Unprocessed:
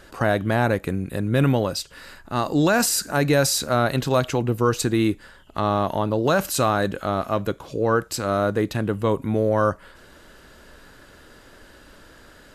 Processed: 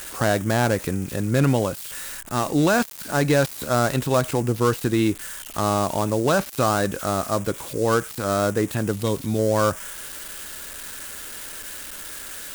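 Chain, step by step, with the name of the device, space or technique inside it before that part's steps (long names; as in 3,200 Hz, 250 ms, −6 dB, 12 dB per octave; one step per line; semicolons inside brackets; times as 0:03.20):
0:08.91–0:09.39: drawn EQ curve 180 Hz 0 dB, 1,900 Hz −8 dB, 4,500 Hz +12 dB
budget class-D amplifier (gap after every zero crossing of 0.11 ms; spike at every zero crossing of −20 dBFS)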